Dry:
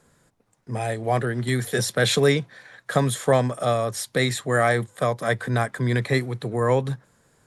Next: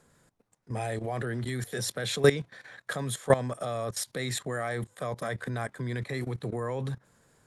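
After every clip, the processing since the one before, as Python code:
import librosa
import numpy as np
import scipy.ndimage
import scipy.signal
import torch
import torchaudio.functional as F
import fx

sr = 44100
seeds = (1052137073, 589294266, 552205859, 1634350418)

y = fx.level_steps(x, sr, step_db=16)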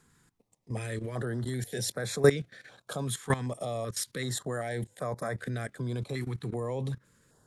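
y = fx.filter_held_notch(x, sr, hz=2.6, low_hz=590.0, high_hz=3000.0)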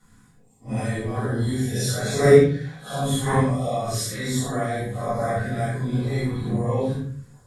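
y = fx.phase_scramble(x, sr, seeds[0], window_ms=200)
y = fx.room_shoebox(y, sr, seeds[1], volume_m3=410.0, walls='furnished', distance_m=7.0)
y = F.gain(torch.from_numpy(y), -2.5).numpy()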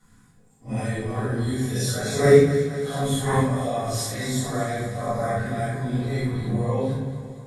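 y = fx.echo_feedback(x, sr, ms=233, feedback_pct=58, wet_db=-11.5)
y = F.gain(torch.from_numpy(y), -1.0).numpy()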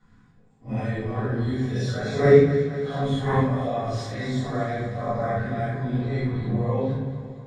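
y = fx.air_absorb(x, sr, metres=180.0)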